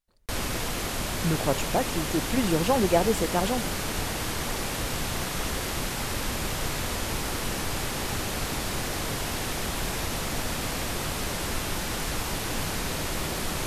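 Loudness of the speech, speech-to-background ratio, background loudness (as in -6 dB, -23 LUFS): -27.0 LUFS, 3.0 dB, -30.0 LUFS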